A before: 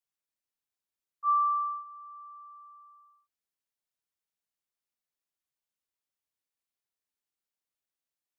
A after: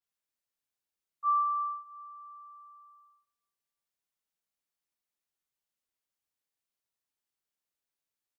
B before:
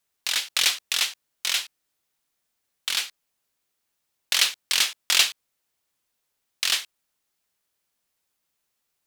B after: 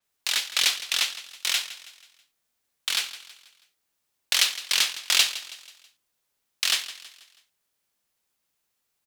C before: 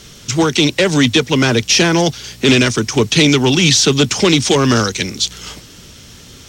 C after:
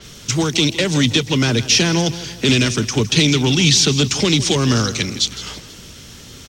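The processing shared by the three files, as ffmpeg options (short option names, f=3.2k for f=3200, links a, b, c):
-filter_complex "[0:a]acrossover=split=220|3000[a][b][c];[b]acompressor=threshold=-25dB:ratio=2[d];[a][d][c]amix=inputs=3:normalize=0,asplit=2[e][f];[f]aecho=0:1:162|324|486|648:0.178|0.0765|0.0329|0.0141[g];[e][g]amix=inputs=2:normalize=0,adynamicequalizer=threshold=0.0141:dfrequency=6500:dqfactor=0.7:tfrequency=6500:tqfactor=0.7:attack=5:release=100:ratio=0.375:range=2:mode=cutabove:tftype=highshelf"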